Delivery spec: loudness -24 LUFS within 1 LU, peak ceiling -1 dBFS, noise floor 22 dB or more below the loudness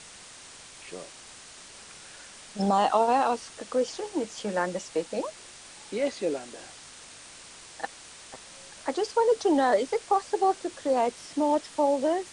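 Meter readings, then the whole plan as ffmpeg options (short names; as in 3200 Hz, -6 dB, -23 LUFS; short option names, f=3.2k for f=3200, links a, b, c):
noise floor -48 dBFS; noise floor target -50 dBFS; loudness -27.5 LUFS; peak -10.0 dBFS; loudness target -24.0 LUFS
-> -af "afftdn=nr=6:nf=-48"
-af "volume=3.5dB"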